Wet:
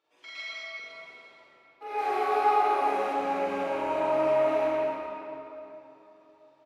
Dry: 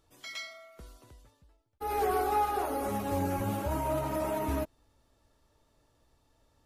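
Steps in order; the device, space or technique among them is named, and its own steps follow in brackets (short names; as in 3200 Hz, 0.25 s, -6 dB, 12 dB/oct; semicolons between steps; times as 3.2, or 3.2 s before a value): HPF 120 Hz 6 dB/oct; station announcement (BPF 430–3900 Hz; bell 2400 Hz +7 dB 0.39 oct; loudspeakers at several distances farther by 15 m 0 dB, 76 m -5 dB; reverb RT60 3.3 s, pre-delay 55 ms, DRR -4.5 dB); 1.98–3.13 high shelf 6100 Hz +5.5 dB; shoebox room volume 170 m³, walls mixed, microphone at 0.49 m; gain -5.5 dB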